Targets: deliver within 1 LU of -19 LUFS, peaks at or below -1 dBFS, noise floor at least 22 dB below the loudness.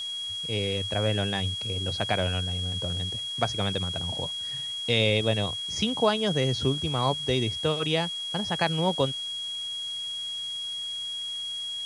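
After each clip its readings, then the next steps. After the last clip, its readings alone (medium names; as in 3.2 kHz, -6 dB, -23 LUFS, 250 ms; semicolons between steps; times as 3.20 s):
steady tone 3.3 kHz; tone level -31 dBFS; noise floor -34 dBFS; noise floor target -50 dBFS; loudness -27.5 LUFS; peak level -8.5 dBFS; loudness target -19.0 LUFS
-> band-stop 3.3 kHz, Q 30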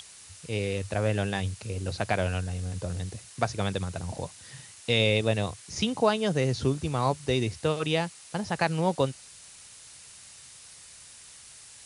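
steady tone not found; noise floor -50 dBFS; noise floor target -51 dBFS
-> noise reduction 6 dB, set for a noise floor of -50 dBFS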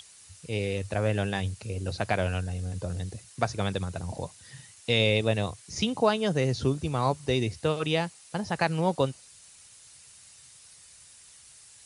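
noise floor -53 dBFS; loudness -29.0 LUFS; peak level -9.0 dBFS; loudness target -19.0 LUFS
-> trim +10 dB; peak limiter -1 dBFS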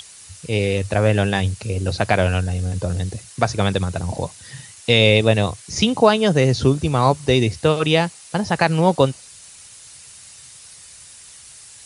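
loudness -19.0 LUFS; peak level -1.0 dBFS; noise floor -43 dBFS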